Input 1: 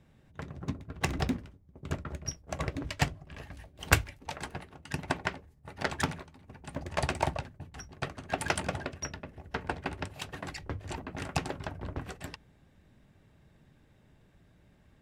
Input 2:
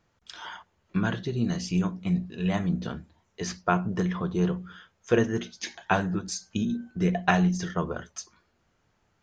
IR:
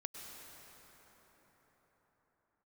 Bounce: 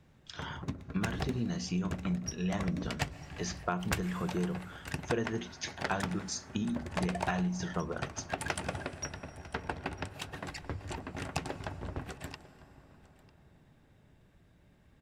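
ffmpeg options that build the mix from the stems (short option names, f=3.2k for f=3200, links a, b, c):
-filter_complex "[0:a]volume=-3dB,asplit=3[a][b][c];[b]volume=-8.5dB[d];[c]volume=-20.5dB[e];[1:a]volume=-3.5dB[f];[2:a]atrim=start_sample=2205[g];[d][g]afir=irnorm=-1:irlink=0[h];[e]aecho=0:1:949:1[i];[a][f][h][i]amix=inputs=4:normalize=0,volume=12.5dB,asoftclip=hard,volume=-12.5dB,acompressor=threshold=-30dB:ratio=3"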